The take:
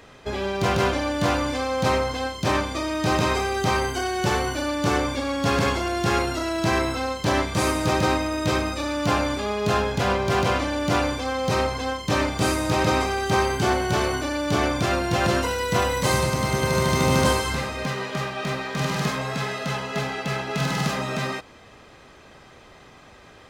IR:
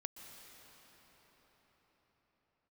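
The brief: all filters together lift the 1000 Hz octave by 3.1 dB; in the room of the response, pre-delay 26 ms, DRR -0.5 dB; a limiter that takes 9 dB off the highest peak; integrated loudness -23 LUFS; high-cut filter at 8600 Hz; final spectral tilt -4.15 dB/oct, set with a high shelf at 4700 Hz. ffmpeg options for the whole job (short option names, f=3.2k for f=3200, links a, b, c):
-filter_complex "[0:a]lowpass=8.6k,equalizer=f=1k:t=o:g=3.5,highshelf=f=4.7k:g=7,alimiter=limit=-14dB:level=0:latency=1,asplit=2[a][b];[1:a]atrim=start_sample=2205,adelay=26[c];[b][c]afir=irnorm=-1:irlink=0,volume=3.5dB[d];[a][d]amix=inputs=2:normalize=0,volume=-2dB"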